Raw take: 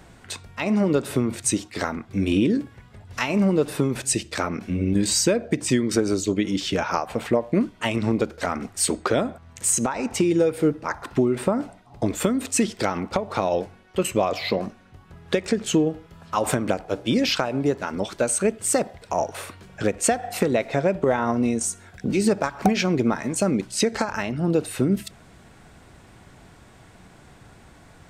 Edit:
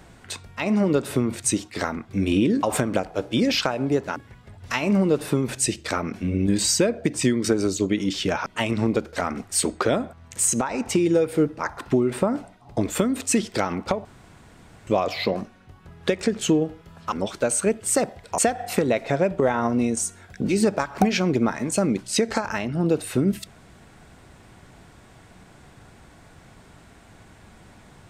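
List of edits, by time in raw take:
6.93–7.71 s: delete
13.30–14.12 s: room tone
16.37–17.90 s: move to 2.63 s
19.16–20.02 s: delete

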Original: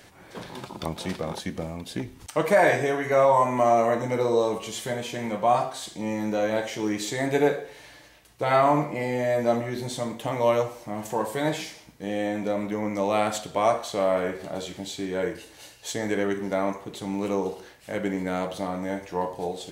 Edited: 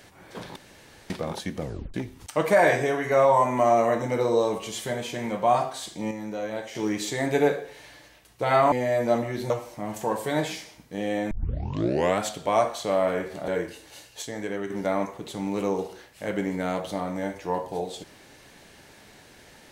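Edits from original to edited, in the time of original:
0.56–1.10 s: room tone
1.61 s: tape stop 0.33 s
6.11–6.75 s: gain -6.5 dB
8.72–9.10 s: delete
9.88–10.59 s: delete
12.40 s: tape start 0.91 s
14.57–15.15 s: delete
15.89–16.37 s: gain -5.5 dB

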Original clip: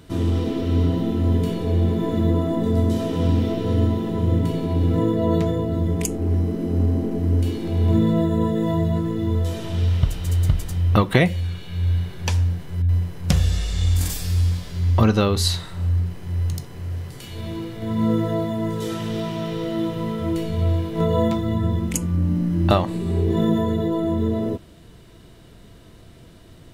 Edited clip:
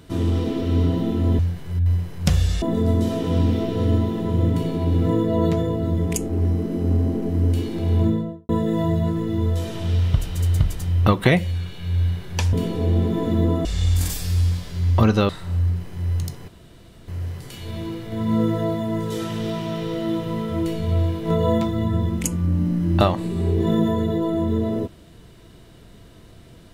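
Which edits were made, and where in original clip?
1.39–2.51 s: swap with 12.42–13.65 s
7.81–8.38 s: studio fade out
15.29–15.59 s: delete
16.78 s: insert room tone 0.60 s

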